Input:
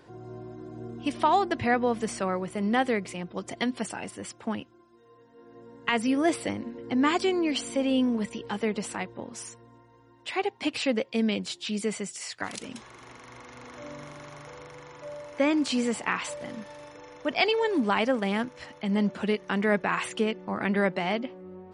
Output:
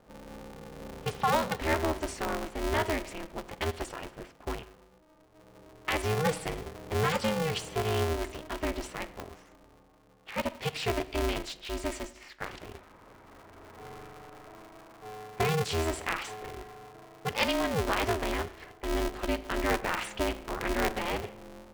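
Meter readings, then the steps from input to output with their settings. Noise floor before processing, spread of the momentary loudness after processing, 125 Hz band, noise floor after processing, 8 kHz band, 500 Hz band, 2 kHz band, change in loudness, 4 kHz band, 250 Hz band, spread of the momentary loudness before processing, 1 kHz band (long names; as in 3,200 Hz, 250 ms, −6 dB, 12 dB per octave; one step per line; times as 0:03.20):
−57 dBFS, 19 LU, +3.0 dB, −59 dBFS, −2.0 dB, −3.0 dB, −3.0 dB, −4.0 dB, −2.5 dB, −9.0 dB, 19 LU, −3.0 dB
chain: four-comb reverb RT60 0.89 s, combs from 29 ms, DRR 13.5 dB
low-pass that shuts in the quiet parts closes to 900 Hz, open at −24.5 dBFS
ring modulator with a square carrier 160 Hz
level −4 dB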